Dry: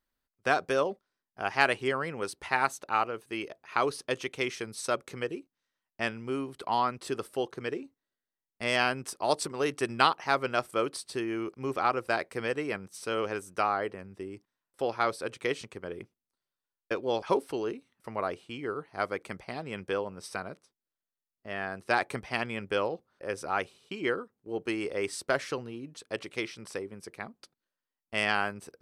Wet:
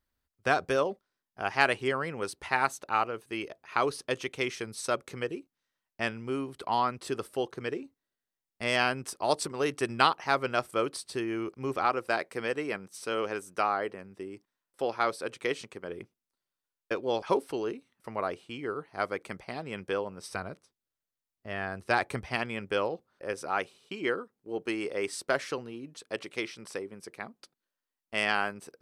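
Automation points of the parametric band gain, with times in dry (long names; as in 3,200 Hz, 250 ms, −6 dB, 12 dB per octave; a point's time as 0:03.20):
parametric band 73 Hz 1.4 octaves
+10 dB
from 0:00.76 +2.5 dB
from 0:11.85 −9 dB
from 0:15.89 −2 dB
from 0:20.29 +8.5 dB
from 0:22.36 −1.5 dB
from 0:23.33 −8.5 dB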